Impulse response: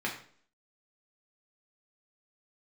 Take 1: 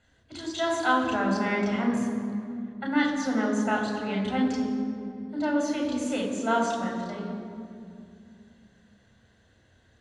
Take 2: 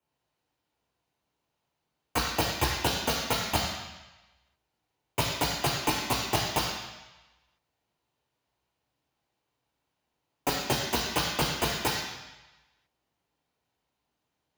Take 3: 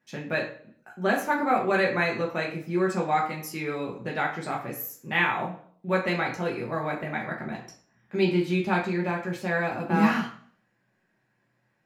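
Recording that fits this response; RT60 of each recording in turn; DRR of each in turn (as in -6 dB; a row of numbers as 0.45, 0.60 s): 3; 2.4, 1.1, 0.50 s; -1.0, 0.5, -2.5 dB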